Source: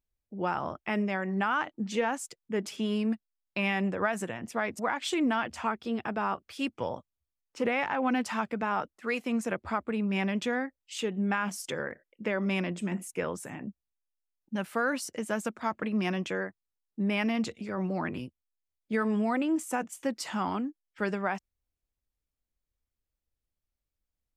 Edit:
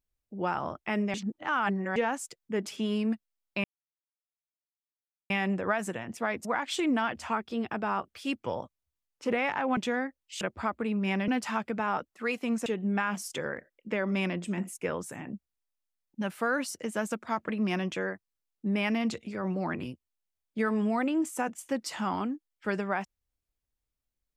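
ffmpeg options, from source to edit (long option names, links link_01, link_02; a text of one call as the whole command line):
ffmpeg -i in.wav -filter_complex "[0:a]asplit=8[link_01][link_02][link_03][link_04][link_05][link_06][link_07][link_08];[link_01]atrim=end=1.142[link_09];[link_02]atrim=start=1.138:end=1.962,asetpts=PTS-STARTPTS,areverse[link_10];[link_03]atrim=start=1.958:end=3.64,asetpts=PTS-STARTPTS,afade=type=out:start_time=1.678:duration=0.004:curve=hsin,apad=pad_dur=1.66[link_11];[link_04]atrim=start=3.64:end=8.112,asetpts=PTS-STARTPTS,afade=type=in:duration=0.004:curve=hsin[link_12];[link_05]atrim=start=10.358:end=11.002[link_13];[link_06]atrim=start=9.488:end=10.362[link_14];[link_07]atrim=start=8.108:end=9.492[link_15];[link_08]atrim=start=10.998[link_16];[link_09][link_10]acrossfade=duration=0.004:curve1=hsin:curve2=hsin[link_17];[link_11][link_12]concat=n=2:v=0:a=1[link_18];[link_17][link_18]acrossfade=duration=0.004:curve1=hsin:curve2=hsin[link_19];[link_19][link_13]acrossfade=duration=0.004:curve1=hsin:curve2=hsin[link_20];[link_20][link_14]acrossfade=duration=0.004:curve1=hsin:curve2=hsin[link_21];[link_21][link_15]acrossfade=duration=0.004:curve1=hsin:curve2=hsin[link_22];[link_22][link_16]acrossfade=duration=0.004:curve1=hsin:curve2=hsin" out.wav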